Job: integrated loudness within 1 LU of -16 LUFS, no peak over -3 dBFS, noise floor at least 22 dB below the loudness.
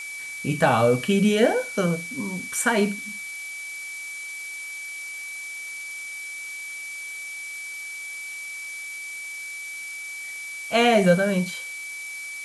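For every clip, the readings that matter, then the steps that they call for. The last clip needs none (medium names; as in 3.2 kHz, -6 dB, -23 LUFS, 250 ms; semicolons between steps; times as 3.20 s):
steady tone 2.3 kHz; tone level -33 dBFS; noise floor -35 dBFS; noise floor target -48 dBFS; loudness -26.0 LUFS; peak level -6.5 dBFS; loudness target -16.0 LUFS
-> band-stop 2.3 kHz, Q 30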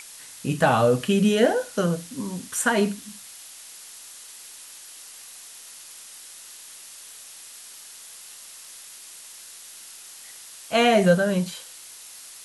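steady tone not found; noise floor -44 dBFS; noise floor target -45 dBFS
-> noise print and reduce 6 dB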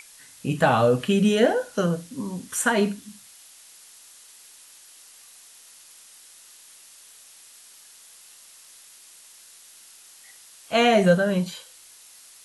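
noise floor -50 dBFS; loudness -22.0 LUFS; peak level -6.0 dBFS; loudness target -16.0 LUFS
-> trim +6 dB; peak limiter -3 dBFS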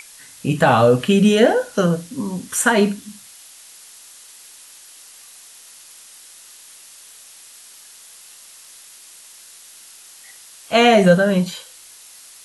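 loudness -16.5 LUFS; peak level -3.0 dBFS; noise floor -44 dBFS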